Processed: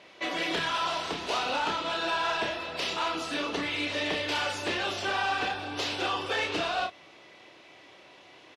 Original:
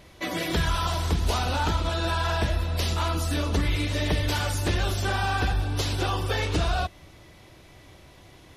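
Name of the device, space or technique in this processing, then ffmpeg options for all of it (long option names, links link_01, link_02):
intercom: -filter_complex "[0:a]highpass=360,lowpass=4900,equalizer=frequency=2700:width_type=o:width=0.43:gain=4.5,asoftclip=type=tanh:threshold=-22dB,asplit=2[link_01][link_02];[link_02]adelay=31,volume=-6dB[link_03];[link_01][link_03]amix=inputs=2:normalize=0"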